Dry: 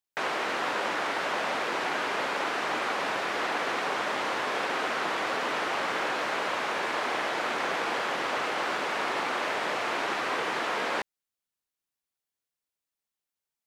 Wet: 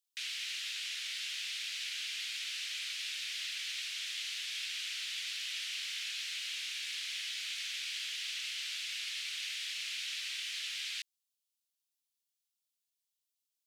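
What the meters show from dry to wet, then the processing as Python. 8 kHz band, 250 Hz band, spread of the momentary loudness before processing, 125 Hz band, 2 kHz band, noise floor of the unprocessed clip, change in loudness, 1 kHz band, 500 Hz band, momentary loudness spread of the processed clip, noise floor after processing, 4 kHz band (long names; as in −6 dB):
+2.0 dB, below −40 dB, 0 LU, below −35 dB, −11.0 dB, below −85 dBFS, −7.5 dB, −35.0 dB, below −40 dB, 0 LU, below −85 dBFS, +0.5 dB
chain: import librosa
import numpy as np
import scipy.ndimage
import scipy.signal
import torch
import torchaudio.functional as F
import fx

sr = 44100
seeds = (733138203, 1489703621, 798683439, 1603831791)

p1 = scipy.signal.sosfilt(scipy.signal.cheby2(4, 60, 860.0, 'highpass', fs=sr, output='sos'), x)
p2 = 10.0 ** (-36.0 / 20.0) * np.tanh(p1 / 10.0 ** (-36.0 / 20.0))
y = p1 + (p2 * 10.0 ** (-10.0 / 20.0))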